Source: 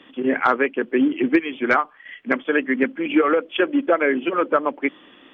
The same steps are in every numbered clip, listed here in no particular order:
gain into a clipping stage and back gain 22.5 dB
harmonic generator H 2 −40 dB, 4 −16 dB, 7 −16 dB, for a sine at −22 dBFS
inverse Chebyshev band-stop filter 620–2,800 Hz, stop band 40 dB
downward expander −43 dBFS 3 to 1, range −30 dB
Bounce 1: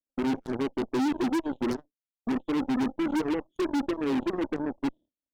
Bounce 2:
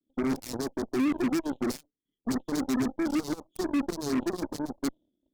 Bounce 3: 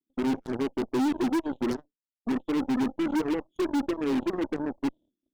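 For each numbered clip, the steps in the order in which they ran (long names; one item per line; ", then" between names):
inverse Chebyshev band-stop filter, then gain into a clipping stage and back, then harmonic generator, then downward expander
gain into a clipping stage and back, then downward expander, then inverse Chebyshev band-stop filter, then harmonic generator
inverse Chebyshev band-stop filter, then downward expander, then harmonic generator, then gain into a clipping stage and back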